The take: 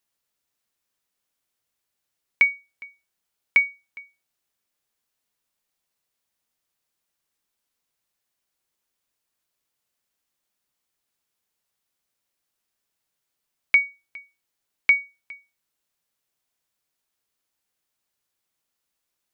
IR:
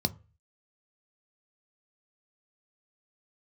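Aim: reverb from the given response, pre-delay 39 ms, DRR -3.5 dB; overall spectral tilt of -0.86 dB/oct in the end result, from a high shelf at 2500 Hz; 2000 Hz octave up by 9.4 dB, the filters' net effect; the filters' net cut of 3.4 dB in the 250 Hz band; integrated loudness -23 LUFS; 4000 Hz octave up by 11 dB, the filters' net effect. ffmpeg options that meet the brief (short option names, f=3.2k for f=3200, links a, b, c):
-filter_complex "[0:a]equalizer=f=250:t=o:g=-5,equalizer=f=2k:t=o:g=5,highshelf=f=2.5k:g=6.5,equalizer=f=4k:t=o:g=7.5,asplit=2[a][b];[1:a]atrim=start_sample=2205,adelay=39[c];[b][c]afir=irnorm=-1:irlink=0,volume=-2.5dB[d];[a][d]amix=inputs=2:normalize=0,volume=-12dB"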